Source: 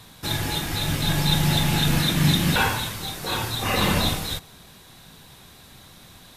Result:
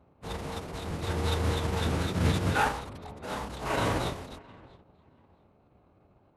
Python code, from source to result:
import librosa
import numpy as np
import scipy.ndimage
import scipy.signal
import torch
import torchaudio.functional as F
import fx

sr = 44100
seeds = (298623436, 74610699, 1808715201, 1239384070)

p1 = fx.wiener(x, sr, points=25)
p2 = scipy.signal.sosfilt(scipy.signal.butter(2, 2000.0, 'lowpass', fs=sr, output='sos'), p1)
p3 = p2 + fx.echo_feedback(p2, sr, ms=668, feedback_pct=18, wet_db=-22, dry=0)
p4 = fx.leveller(p3, sr, passes=1)
p5 = (np.mod(10.0 ** (24.0 / 20.0) * p4 + 1.0, 2.0) - 1.0) / 10.0 ** (24.0 / 20.0)
p6 = p4 + (p5 * 10.0 ** (-7.0 / 20.0))
p7 = fx.highpass(p6, sr, hz=220.0, slope=6)
p8 = fx.pitch_keep_formants(p7, sr, semitones=-10.5)
p9 = fx.upward_expand(p8, sr, threshold_db=-35.0, expansion=1.5)
y = p9 * 10.0 ** (-1.0 / 20.0)